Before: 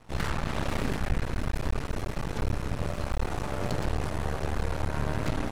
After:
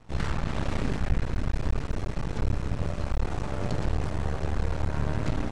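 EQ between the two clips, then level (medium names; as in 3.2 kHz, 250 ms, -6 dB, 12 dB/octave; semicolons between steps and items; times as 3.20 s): low-pass 8.9 kHz 24 dB/octave; bass shelf 290 Hz +5.5 dB; -2.5 dB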